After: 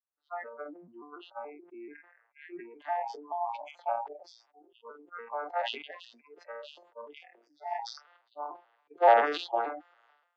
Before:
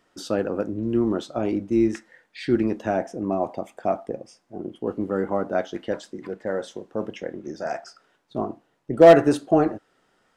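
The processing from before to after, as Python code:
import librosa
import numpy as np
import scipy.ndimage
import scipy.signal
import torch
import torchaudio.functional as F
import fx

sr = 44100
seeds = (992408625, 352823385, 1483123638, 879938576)

y = fx.vocoder_arp(x, sr, chord='major triad', root=46, every_ms=144)
y = fx.lowpass(y, sr, hz=fx.steps((0.0, 2100.0), (2.82, 3900.0)), slope=24)
y = fx.noise_reduce_blind(y, sr, reduce_db=30)
y = scipy.signal.sosfilt(scipy.signal.butter(4, 740.0, 'highpass', fs=sr, output='sos'), y)
y = fx.sustainer(y, sr, db_per_s=70.0)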